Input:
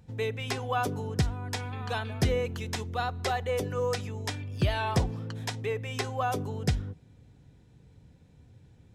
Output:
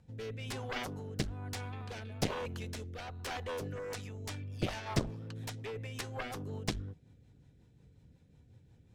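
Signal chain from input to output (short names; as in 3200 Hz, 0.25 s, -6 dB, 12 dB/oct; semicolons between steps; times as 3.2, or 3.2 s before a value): added harmonics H 3 -8 dB, 4 -21 dB, 7 -24 dB, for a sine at -14 dBFS; rotary speaker horn 1.1 Hz, later 5.5 Hz, at 3.66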